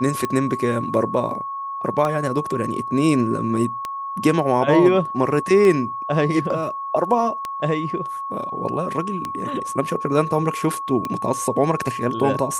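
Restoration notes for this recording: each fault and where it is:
tick 33 1/3 rpm -11 dBFS
whine 1.1 kHz -26 dBFS

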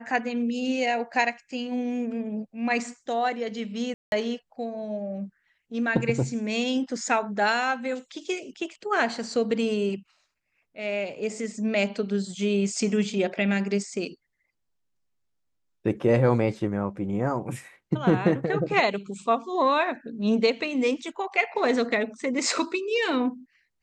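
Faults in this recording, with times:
3.94–4.12 s: dropout 181 ms

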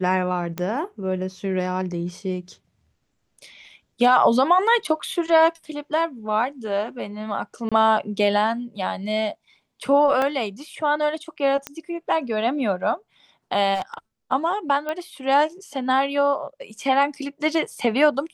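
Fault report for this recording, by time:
0.58 s: pop -13 dBFS
7.69–7.72 s: dropout 26 ms
10.22 s: dropout 2.3 ms
11.67 s: pop -12 dBFS
13.74–13.94 s: clipped -21 dBFS
14.89 s: pop -15 dBFS

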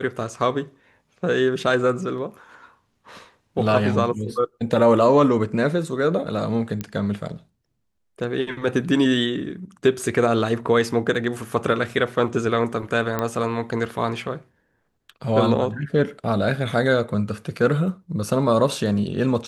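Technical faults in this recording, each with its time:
6.81 s: pop -14 dBFS
13.19 s: pop -10 dBFS

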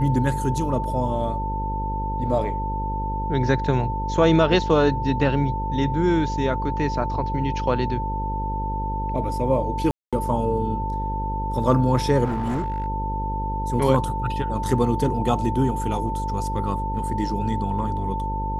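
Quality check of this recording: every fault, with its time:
buzz 50 Hz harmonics 11 -28 dBFS
whine 890 Hz -27 dBFS
9.91–10.13 s: dropout 216 ms
12.24–12.86 s: clipped -21 dBFS

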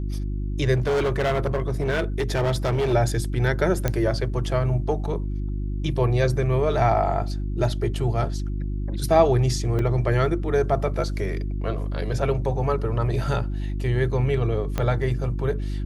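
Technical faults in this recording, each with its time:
hum 50 Hz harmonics 7 -27 dBFS
0.74–2.94 s: clipped -19 dBFS
3.88 s: pop -9 dBFS
9.79 s: dropout 2.1 ms
14.78 s: pop -11 dBFS

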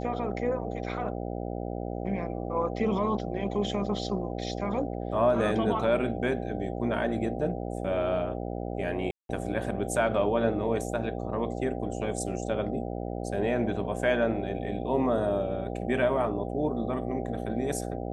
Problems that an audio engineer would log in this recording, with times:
buzz 60 Hz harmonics 13 -34 dBFS
9.11–9.29 s: dropout 182 ms

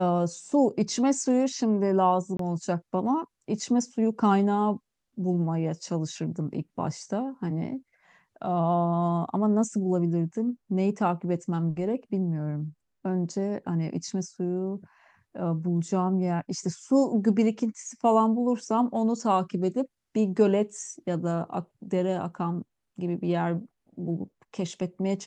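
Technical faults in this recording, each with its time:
2.37–2.39 s: dropout 23 ms

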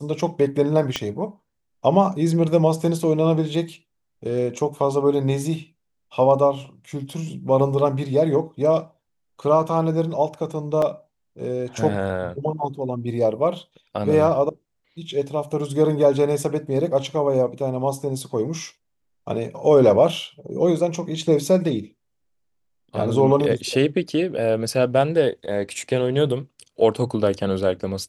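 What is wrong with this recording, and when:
0.96 s: pop -9 dBFS
10.82 s: dropout 2.9 ms

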